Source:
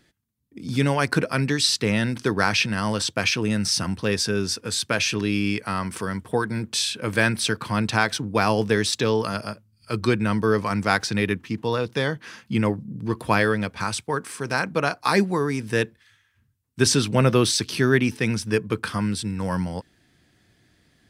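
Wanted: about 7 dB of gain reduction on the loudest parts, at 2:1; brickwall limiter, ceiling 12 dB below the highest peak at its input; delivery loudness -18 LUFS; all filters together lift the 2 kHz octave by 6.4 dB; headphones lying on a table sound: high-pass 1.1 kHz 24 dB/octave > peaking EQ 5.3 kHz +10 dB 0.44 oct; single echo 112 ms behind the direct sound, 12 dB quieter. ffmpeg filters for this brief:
-af "equalizer=f=2000:t=o:g=8.5,acompressor=threshold=0.0708:ratio=2,alimiter=limit=0.133:level=0:latency=1,highpass=f=1100:w=0.5412,highpass=f=1100:w=1.3066,equalizer=f=5300:t=o:w=0.44:g=10,aecho=1:1:112:0.251,volume=2.99"

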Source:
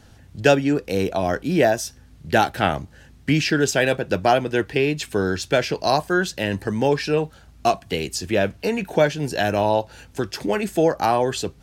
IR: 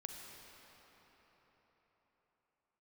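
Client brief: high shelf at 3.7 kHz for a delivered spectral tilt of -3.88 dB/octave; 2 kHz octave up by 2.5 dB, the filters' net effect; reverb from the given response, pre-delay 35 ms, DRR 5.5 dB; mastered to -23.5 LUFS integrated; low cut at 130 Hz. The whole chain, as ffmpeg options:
-filter_complex "[0:a]highpass=130,equalizer=f=2000:t=o:g=5.5,highshelf=f=3700:g=-8,asplit=2[s0][s1];[1:a]atrim=start_sample=2205,adelay=35[s2];[s1][s2]afir=irnorm=-1:irlink=0,volume=0.75[s3];[s0][s3]amix=inputs=2:normalize=0,volume=0.708"

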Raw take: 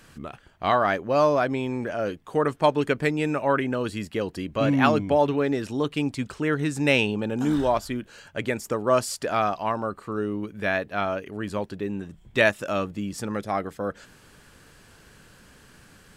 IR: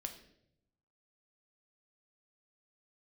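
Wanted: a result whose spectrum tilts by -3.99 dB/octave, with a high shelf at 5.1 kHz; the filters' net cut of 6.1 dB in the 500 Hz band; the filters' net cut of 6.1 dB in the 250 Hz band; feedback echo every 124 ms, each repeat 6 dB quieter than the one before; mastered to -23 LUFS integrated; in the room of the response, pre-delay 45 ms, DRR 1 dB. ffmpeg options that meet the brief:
-filter_complex "[0:a]equalizer=f=250:t=o:g=-5.5,equalizer=f=500:t=o:g=-6.5,highshelf=f=5100:g=-5.5,aecho=1:1:124|248|372|496|620|744:0.501|0.251|0.125|0.0626|0.0313|0.0157,asplit=2[s0][s1];[1:a]atrim=start_sample=2205,adelay=45[s2];[s1][s2]afir=irnorm=-1:irlink=0,volume=1.19[s3];[s0][s3]amix=inputs=2:normalize=0,volume=1.33"

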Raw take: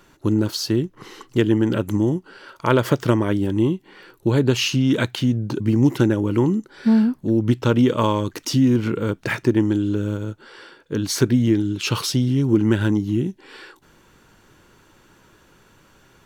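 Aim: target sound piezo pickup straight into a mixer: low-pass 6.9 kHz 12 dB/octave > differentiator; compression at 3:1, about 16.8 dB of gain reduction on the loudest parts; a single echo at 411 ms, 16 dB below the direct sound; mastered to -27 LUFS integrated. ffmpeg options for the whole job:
-af "acompressor=threshold=0.0158:ratio=3,lowpass=6900,aderivative,aecho=1:1:411:0.158,volume=11.9"

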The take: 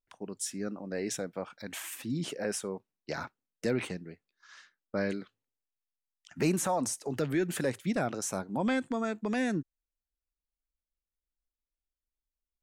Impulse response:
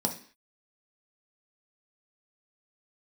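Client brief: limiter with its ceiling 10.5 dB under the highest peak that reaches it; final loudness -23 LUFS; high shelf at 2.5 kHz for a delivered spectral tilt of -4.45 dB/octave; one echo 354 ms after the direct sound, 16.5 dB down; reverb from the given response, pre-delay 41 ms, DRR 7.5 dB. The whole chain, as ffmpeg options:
-filter_complex "[0:a]highshelf=f=2500:g=6.5,alimiter=level_in=1.26:limit=0.0631:level=0:latency=1,volume=0.794,aecho=1:1:354:0.15,asplit=2[s0][s1];[1:a]atrim=start_sample=2205,adelay=41[s2];[s1][s2]afir=irnorm=-1:irlink=0,volume=0.2[s3];[s0][s3]amix=inputs=2:normalize=0,volume=3.76"

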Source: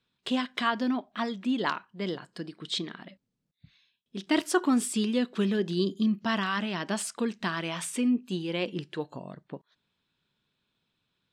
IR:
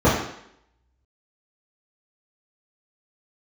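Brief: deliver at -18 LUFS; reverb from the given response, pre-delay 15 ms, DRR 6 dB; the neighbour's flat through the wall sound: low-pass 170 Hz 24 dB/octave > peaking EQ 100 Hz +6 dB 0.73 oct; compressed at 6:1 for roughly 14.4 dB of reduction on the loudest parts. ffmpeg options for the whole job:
-filter_complex "[0:a]acompressor=threshold=0.0158:ratio=6,asplit=2[s0][s1];[1:a]atrim=start_sample=2205,adelay=15[s2];[s1][s2]afir=irnorm=-1:irlink=0,volume=0.0376[s3];[s0][s3]amix=inputs=2:normalize=0,lowpass=f=170:w=0.5412,lowpass=f=170:w=1.3066,equalizer=f=100:t=o:w=0.73:g=6,volume=28.2"

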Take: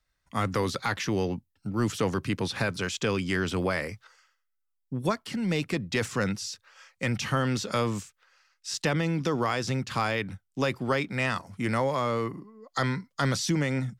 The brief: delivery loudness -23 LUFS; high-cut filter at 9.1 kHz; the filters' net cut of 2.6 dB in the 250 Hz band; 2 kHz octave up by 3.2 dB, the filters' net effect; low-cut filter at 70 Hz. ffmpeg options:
-af "highpass=70,lowpass=9100,equalizer=f=250:t=o:g=-3.5,equalizer=f=2000:t=o:g=4,volume=2"

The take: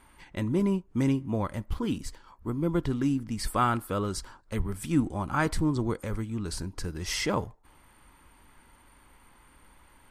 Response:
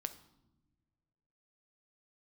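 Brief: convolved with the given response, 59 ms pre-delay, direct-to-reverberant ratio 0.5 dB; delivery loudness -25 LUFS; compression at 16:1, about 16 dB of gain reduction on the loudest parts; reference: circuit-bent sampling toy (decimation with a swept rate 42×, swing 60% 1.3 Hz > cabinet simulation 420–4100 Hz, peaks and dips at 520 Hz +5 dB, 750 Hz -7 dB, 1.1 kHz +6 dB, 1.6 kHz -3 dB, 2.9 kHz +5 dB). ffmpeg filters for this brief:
-filter_complex "[0:a]acompressor=threshold=0.0178:ratio=16,asplit=2[s0][s1];[1:a]atrim=start_sample=2205,adelay=59[s2];[s1][s2]afir=irnorm=-1:irlink=0,volume=1.12[s3];[s0][s3]amix=inputs=2:normalize=0,acrusher=samples=42:mix=1:aa=0.000001:lfo=1:lforange=25.2:lforate=1.3,highpass=420,equalizer=f=520:t=q:w=4:g=5,equalizer=f=750:t=q:w=4:g=-7,equalizer=f=1100:t=q:w=4:g=6,equalizer=f=1600:t=q:w=4:g=-3,equalizer=f=2900:t=q:w=4:g=5,lowpass=f=4100:w=0.5412,lowpass=f=4100:w=1.3066,volume=7.5"

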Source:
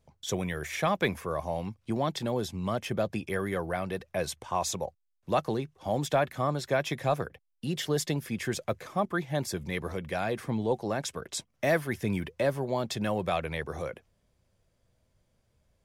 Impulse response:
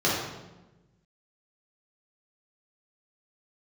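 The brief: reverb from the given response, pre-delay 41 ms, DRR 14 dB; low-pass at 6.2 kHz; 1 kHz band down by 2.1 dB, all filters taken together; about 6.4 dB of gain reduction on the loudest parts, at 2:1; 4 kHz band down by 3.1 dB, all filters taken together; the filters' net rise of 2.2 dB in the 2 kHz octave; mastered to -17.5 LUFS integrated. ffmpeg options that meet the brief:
-filter_complex "[0:a]lowpass=6200,equalizer=f=1000:t=o:g=-4,equalizer=f=2000:t=o:g=5,equalizer=f=4000:t=o:g=-4.5,acompressor=threshold=0.0224:ratio=2,asplit=2[s0][s1];[1:a]atrim=start_sample=2205,adelay=41[s2];[s1][s2]afir=irnorm=-1:irlink=0,volume=0.0355[s3];[s0][s3]amix=inputs=2:normalize=0,volume=8.41"

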